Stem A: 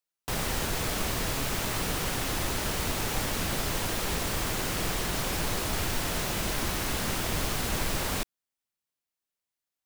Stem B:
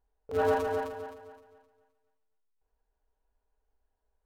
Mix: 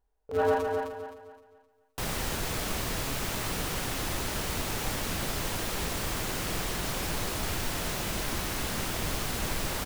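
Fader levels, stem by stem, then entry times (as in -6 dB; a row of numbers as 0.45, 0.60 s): -2.0, +1.0 dB; 1.70, 0.00 s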